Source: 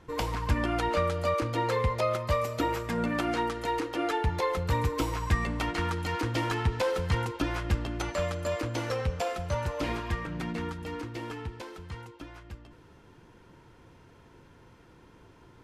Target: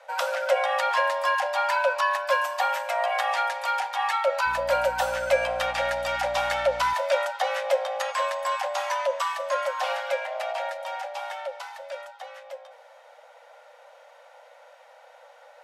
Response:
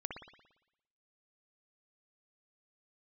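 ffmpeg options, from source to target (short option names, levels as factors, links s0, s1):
-filter_complex "[0:a]afreqshift=470,asettb=1/sr,asplit=3[s0][s1][s2];[s0]atrim=end=4.464[s3];[s1]atrim=start=4.46:end=6.94,asetpts=PTS-STARTPTS,afade=t=in:d=0.004:c=qsin,afade=t=out:st=2.476:d=0.004:c=qsin,aeval=exprs='val(0)+0.00398*(sin(2*PI*60*n/s)+sin(2*PI*2*60*n/s)/2+sin(2*PI*3*60*n/s)/3+sin(2*PI*4*60*n/s)/4+sin(2*PI*5*60*n/s)/5)':c=same[s4];[s2]atrim=start=6.936[s5];[s3][s4]acrossfade=d=0.004:c1=hsin:c2=qsin[s6];[s6][s5]acrossfade=d=0.004:c1=qsin:c2=hsin,volume=1.5"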